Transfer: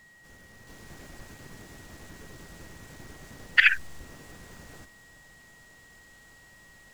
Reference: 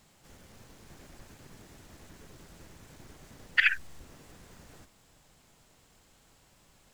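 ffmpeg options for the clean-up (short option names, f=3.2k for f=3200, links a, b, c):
-af "bandreject=f=1.9k:w=30,asetnsamples=n=441:p=0,asendcmd='0.67 volume volume -5dB',volume=0dB"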